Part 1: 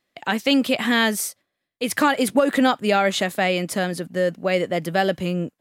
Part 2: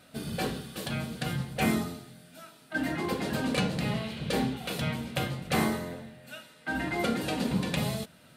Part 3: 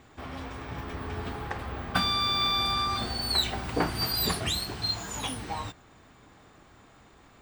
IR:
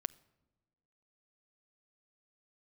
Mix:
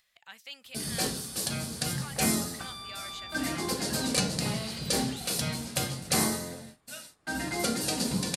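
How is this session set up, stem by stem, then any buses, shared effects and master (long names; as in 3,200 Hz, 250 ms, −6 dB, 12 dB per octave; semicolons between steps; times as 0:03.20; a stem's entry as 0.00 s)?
−17.5 dB, 0.00 s, no send, guitar amp tone stack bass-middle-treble 10-0-10
−2.0 dB, 0.60 s, no send, flat-topped bell 7,300 Hz +15 dB; noise gate −45 dBFS, range −28 dB
−15.5 dB, 0.65 s, no send, low-pass filter 9,500 Hz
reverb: not used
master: upward compression, threshold −54 dBFS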